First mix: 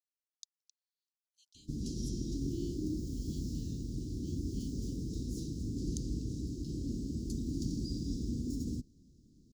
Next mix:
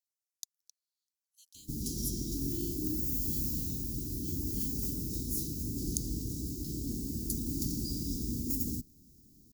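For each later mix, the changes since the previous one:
master: remove distance through air 120 m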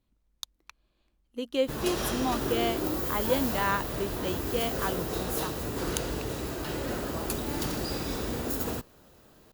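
speech: remove brick-wall FIR high-pass 1.7 kHz; master: remove elliptic band-stop 280–5400 Hz, stop band 50 dB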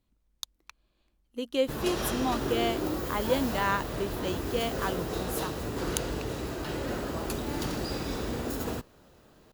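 speech: add treble shelf 7.6 kHz +10 dB; master: add treble shelf 8.6 kHz -8.5 dB

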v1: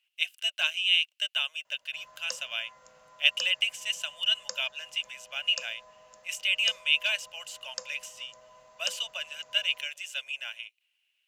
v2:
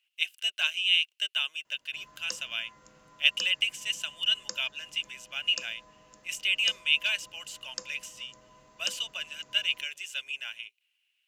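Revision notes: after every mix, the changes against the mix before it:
master: add resonant low shelf 450 Hz +8 dB, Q 3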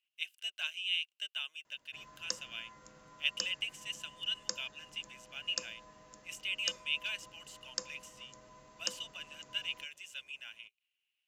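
speech -10.0 dB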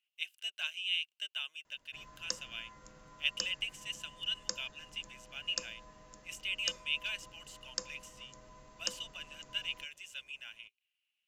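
master: remove high-pass 120 Hz 6 dB/octave

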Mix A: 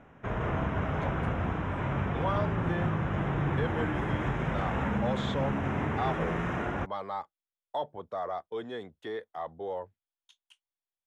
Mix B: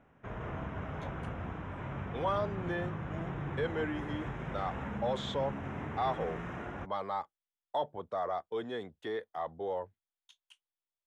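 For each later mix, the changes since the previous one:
background -9.0 dB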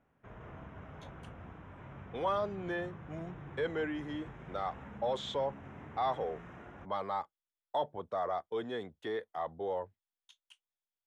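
background -9.5 dB

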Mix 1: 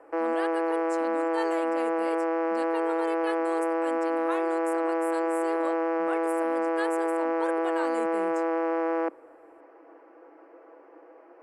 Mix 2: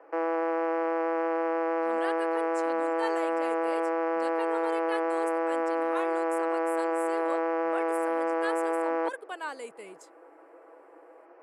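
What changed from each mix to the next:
speech: entry +1.65 s; master: add tone controls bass -13 dB, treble -1 dB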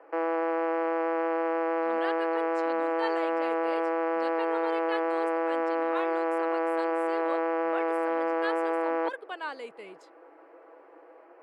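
master: add resonant high shelf 5.7 kHz -11.5 dB, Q 1.5

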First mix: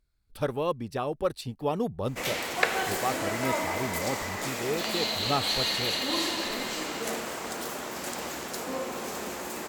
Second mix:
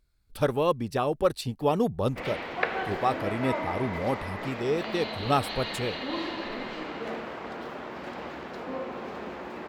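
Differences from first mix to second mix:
speech +4.0 dB; background: add distance through air 350 m

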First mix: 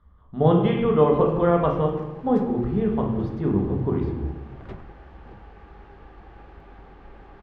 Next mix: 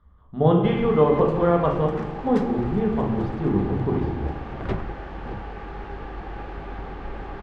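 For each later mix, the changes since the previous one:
background +12.0 dB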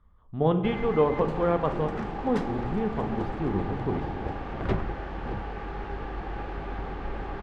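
speech: send -10.5 dB

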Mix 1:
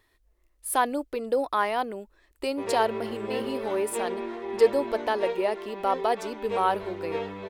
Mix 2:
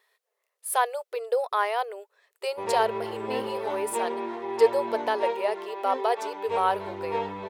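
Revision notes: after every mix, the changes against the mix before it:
speech: add brick-wall FIR high-pass 390 Hz; background: add peaking EQ 900 Hz +10 dB 0.35 oct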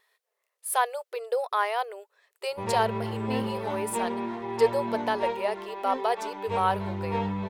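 master: add resonant low shelf 250 Hz +11.5 dB, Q 1.5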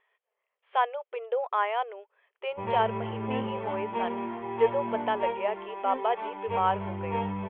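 master: add rippled Chebyshev low-pass 3.3 kHz, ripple 3 dB

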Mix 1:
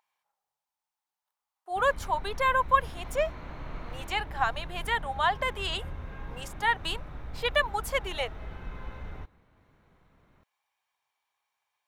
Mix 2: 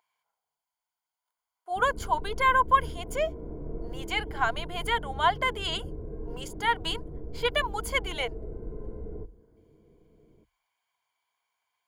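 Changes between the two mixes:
background: add resonant low-pass 410 Hz, resonance Q 4.7; master: add rippled EQ curve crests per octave 1.8, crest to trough 9 dB

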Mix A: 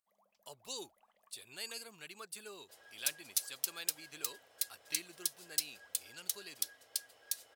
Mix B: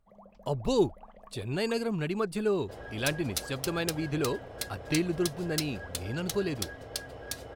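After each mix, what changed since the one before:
master: remove differentiator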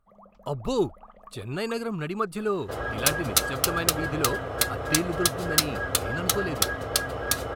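second sound +11.5 dB; master: add graphic EQ with 31 bands 1.25 kHz +12 dB, 5 kHz -3 dB, 12.5 kHz +4 dB

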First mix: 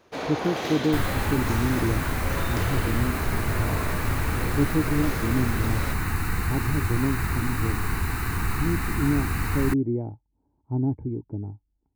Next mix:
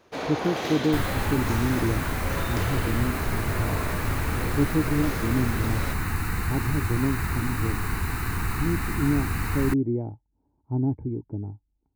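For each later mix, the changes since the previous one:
second sound: send -9.5 dB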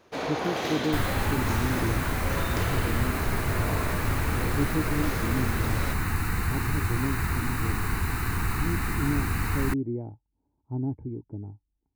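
speech -5.0 dB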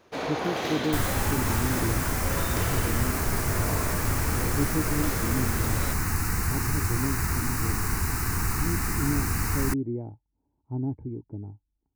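second sound: add resonant high shelf 4.5 kHz +6 dB, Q 3

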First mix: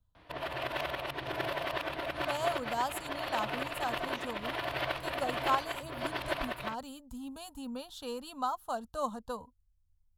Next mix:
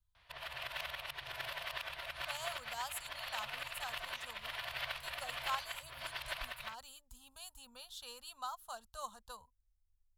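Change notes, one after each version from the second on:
master: add amplifier tone stack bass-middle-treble 10-0-10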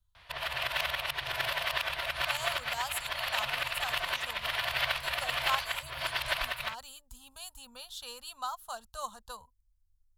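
speech +6.0 dB; background +10.5 dB

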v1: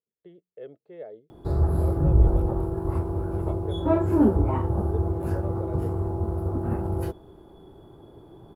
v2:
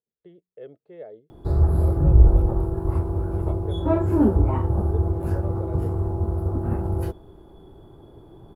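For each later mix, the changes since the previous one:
master: add bass shelf 70 Hz +9 dB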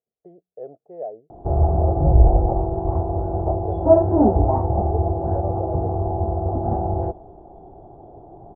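master: add resonant low-pass 730 Hz, resonance Q 8.3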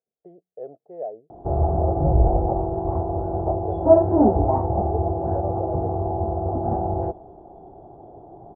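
master: add bass shelf 70 Hz -9 dB

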